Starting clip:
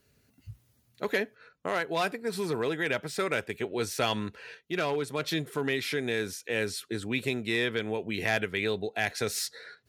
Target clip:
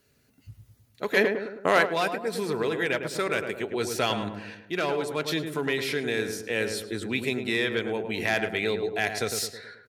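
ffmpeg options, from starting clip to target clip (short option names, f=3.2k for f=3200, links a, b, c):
-filter_complex "[0:a]lowshelf=f=140:g=-5,asplit=2[a][b];[b]adelay=106,lowpass=f=1.3k:p=1,volume=-5.5dB,asplit=2[c][d];[d]adelay=106,lowpass=f=1.3k:p=1,volume=0.53,asplit=2[e][f];[f]adelay=106,lowpass=f=1.3k:p=1,volume=0.53,asplit=2[g][h];[h]adelay=106,lowpass=f=1.3k:p=1,volume=0.53,asplit=2[i][j];[j]adelay=106,lowpass=f=1.3k:p=1,volume=0.53,asplit=2[k][l];[l]adelay=106,lowpass=f=1.3k:p=1,volume=0.53,asplit=2[m][n];[n]adelay=106,lowpass=f=1.3k:p=1,volume=0.53[o];[a][c][e][g][i][k][m][o]amix=inputs=8:normalize=0,asplit=3[p][q][r];[p]afade=t=out:st=1.16:d=0.02[s];[q]acontrast=88,afade=t=in:st=1.16:d=0.02,afade=t=out:st=1.85:d=0.02[t];[r]afade=t=in:st=1.85:d=0.02[u];[s][t][u]amix=inputs=3:normalize=0,volume=2dB"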